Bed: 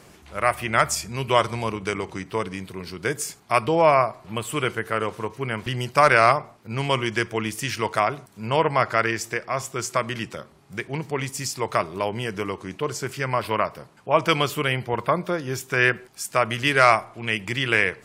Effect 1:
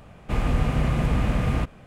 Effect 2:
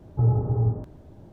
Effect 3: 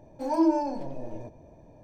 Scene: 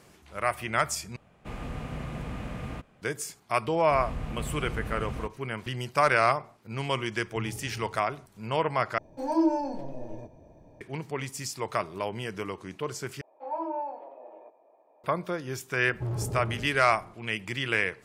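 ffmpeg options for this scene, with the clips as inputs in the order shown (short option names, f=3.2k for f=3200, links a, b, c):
-filter_complex "[1:a]asplit=2[a][b];[2:a]asplit=2[c][d];[3:a]asplit=2[e][f];[0:a]volume=-6.5dB[g];[a]lowshelf=f=96:g=-8[h];[f]highpass=f=430:w=0.5412,highpass=f=430:w=1.3066,equalizer=f=780:t=q:w=4:g=6,equalizer=f=1.2k:t=q:w=4:g=9,equalizer=f=1.6k:t=q:w=4:g=-6,lowpass=f=2.7k:w=0.5412,lowpass=f=2.7k:w=1.3066[i];[d]volume=24dB,asoftclip=hard,volume=-24dB[j];[g]asplit=4[k][l][m][n];[k]atrim=end=1.164[o];[h]atrim=end=1.86,asetpts=PTS-STARTPTS,volume=-10.5dB[p];[l]atrim=start=3.016:end=8.984[q];[e]atrim=end=1.83,asetpts=PTS-STARTPTS,volume=-1.5dB[r];[m]atrim=start=10.806:end=13.214[s];[i]atrim=end=1.83,asetpts=PTS-STARTPTS,volume=-6.5dB[t];[n]atrim=start=15.036[u];[b]atrim=end=1.86,asetpts=PTS-STARTPTS,volume=-12.5dB,afade=t=in:d=0.004:c=hsin,afade=t=out:st=1.856:d=0.004:c=hsin,adelay=3620[v];[c]atrim=end=1.32,asetpts=PTS-STARTPTS,volume=-17.5dB,afade=t=in:d=0.004:c=hsin,afade=t=out:st=1.316:d=0.004:c=hsin,adelay=7170[w];[j]atrim=end=1.32,asetpts=PTS-STARTPTS,volume=-5dB,afade=t=in:d=0.004:c=hsin,afade=t=out:st=1.316:d=0.004:c=hsin,adelay=15830[x];[o][p]acrossfade=d=0.004:c1=hsin:c2=hsin[y];[y][q]acrossfade=d=0.004:c1=hsin:c2=hsin[z];[z][r]acrossfade=d=0.004:c1=hsin:c2=hsin[aa];[aa][s]acrossfade=d=0.004:c1=hsin:c2=hsin[ab];[ab][t]acrossfade=d=0.004:c1=hsin:c2=hsin[ac];[ac][u]acrossfade=d=0.004:c1=hsin:c2=hsin[ad];[ad][v][w][x]amix=inputs=4:normalize=0"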